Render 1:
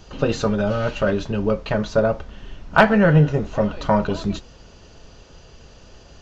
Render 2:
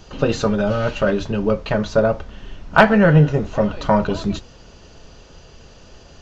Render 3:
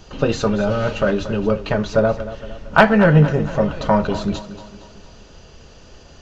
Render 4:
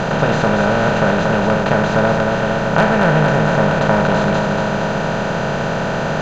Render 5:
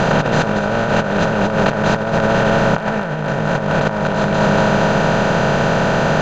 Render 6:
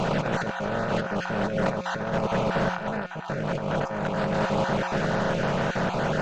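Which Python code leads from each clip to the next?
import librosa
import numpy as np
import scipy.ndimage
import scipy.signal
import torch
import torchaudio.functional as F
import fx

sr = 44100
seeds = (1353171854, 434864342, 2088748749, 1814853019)

y1 = fx.hum_notches(x, sr, base_hz=50, count=2)
y1 = y1 * 10.0 ** (2.0 / 20.0)
y2 = fx.echo_feedback(y1, sr, ms=230, feedback_pct=50, wet_db=-14.0)
y3 = fx.bin_compress(y2, sr, power=0.2)
y3 = y3 * 10.0 ** (-7.0 / 20.0)
y4 = fx.over_compress(y3, sr, threshold_db=-17.0, ratio=-0.5)
y4 = y4 * 10.0 ** (2.0 / 20.0)
y5 = fx.spec_dropout(y4, sr, seeds[0], share_pct=22)
y5 = fx.comb_fb(y5, sr, f0_hz=180.0, decay_s=1.6, harmonics='all', damping=0.0, mix_pct=70)
y5 = fx.doppler_dist(y5, sr, depth_ms=0.25)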